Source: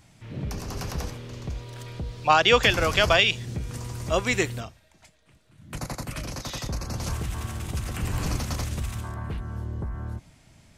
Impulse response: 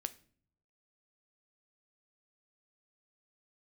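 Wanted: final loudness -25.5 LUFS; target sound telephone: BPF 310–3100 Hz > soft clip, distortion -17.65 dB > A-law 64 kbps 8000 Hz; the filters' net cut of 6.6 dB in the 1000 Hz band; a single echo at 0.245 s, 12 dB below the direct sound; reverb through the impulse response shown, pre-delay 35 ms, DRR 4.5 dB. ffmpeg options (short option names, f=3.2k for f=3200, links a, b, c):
-filter_complex "[0:a]equalizer=f=1k:t=o:g=-9,aecho=1:1:245:0.251,asplit=2[a][b];[1:a]atrim=start_sample=2205,adelay=35[c];[b][c]afir=irnorm=-1:irlink=0,volume=-3dB[d];[a][d]amix=inputs=2:normalize=0,highpass=310,lowpass=3.1k,asoftclip=threshold=-13.5dB,volume=3dB" -ar 8000 -c:a pcm_alaw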